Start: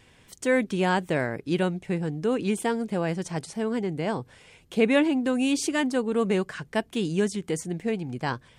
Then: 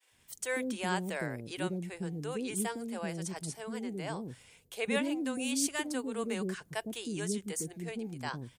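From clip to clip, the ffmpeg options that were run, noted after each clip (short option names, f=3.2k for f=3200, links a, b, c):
-filter_complex "[0:a]agate=range=-33dB:threshold=-52dB:ratio=3:detection=peak,aemphasis=mode=production:type=50fm,acrossover=split=440[a][b];[a]adelay=110[c];[c][b]amix=inputs=2:normalize=0,volume=-8.5dB"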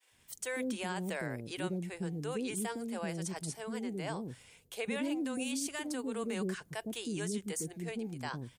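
-af "alimiter=level_in=2.5dB:limit=-24dB:level=0:latency=1:release=39,volume=-2.5dB"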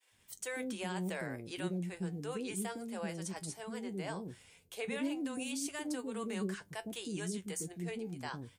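-af "flanger=delay=9.6:depth=1.9:regen=58:speed=0.32:shape=triangular,volume=2dB"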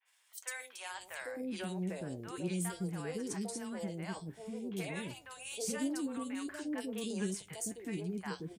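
-filter_complex "[0:a]acrossover=split=720|2600[a][b][c];[c]adelay=50[d];[a]adelay=800[e];[e][b][d]amix=inputs=3:normalize=0,volume=1dB"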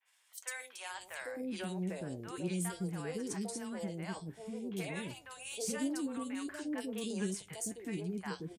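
-af "aresample=32000,aresample=44100"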